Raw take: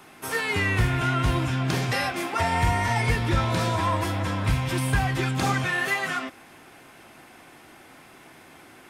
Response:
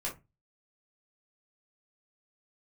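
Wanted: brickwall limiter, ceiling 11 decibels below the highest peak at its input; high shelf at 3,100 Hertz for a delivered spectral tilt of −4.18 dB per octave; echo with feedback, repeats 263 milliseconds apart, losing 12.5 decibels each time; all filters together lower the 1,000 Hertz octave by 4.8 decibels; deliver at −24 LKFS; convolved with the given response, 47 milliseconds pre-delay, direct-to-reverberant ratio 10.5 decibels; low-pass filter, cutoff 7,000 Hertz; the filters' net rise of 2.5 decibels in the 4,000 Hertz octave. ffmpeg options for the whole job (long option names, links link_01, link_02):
-filter_complex "[0:a]lowpass=7000,equalizer=frequency=1000:width_type=o:gain=-6,highshelf=frequency=3100:gain=-6,equalizer=frequency=4000:width_type=o:gain=8.5,alimiter=limit=-21.5dB:level=0:latency=1,aecho=1:1:263|526|789:0.237|0.0569|0.0137,asplit=2[link_01][link_02];[1:a]atrim=start_sample=2205,adelay=47[link_03];[link_02][link_03]afir=irnorm=-1:irlink=0,volume=-13dB[link_04];[link_01][link_04]amix=inputs=2:normalize=0,volume=5dB"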